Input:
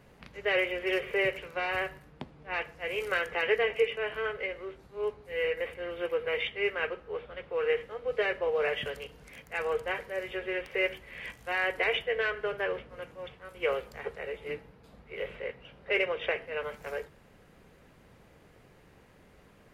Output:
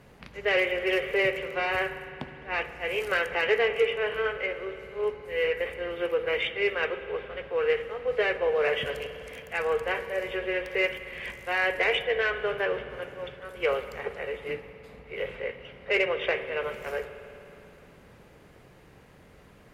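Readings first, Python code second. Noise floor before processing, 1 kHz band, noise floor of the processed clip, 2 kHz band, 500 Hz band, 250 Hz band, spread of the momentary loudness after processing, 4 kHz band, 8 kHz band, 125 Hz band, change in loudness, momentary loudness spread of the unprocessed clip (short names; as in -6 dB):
-59 dBFS, +3.5 dB, -54 dBFS, +3.5 dB, +3.5 dB, +3.5 dB, 13 LU, +3.5 dB, n/a, +4.0 dB, +3.5 dB, 14 LU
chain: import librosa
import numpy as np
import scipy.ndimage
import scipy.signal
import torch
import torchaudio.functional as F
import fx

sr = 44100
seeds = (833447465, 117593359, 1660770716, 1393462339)

y = fx.cheby_harmonics(x, sr, harmonics=(5,), levels_db=(-27,), full_scale_db=-14.0)
y = fx.rev_spring(y, sr, rt60_s=3.2, pass_ms=(52,), chirp_ms=35, drr_db=10.5)
y = y * 10.0 ** (2.0 / 20.0)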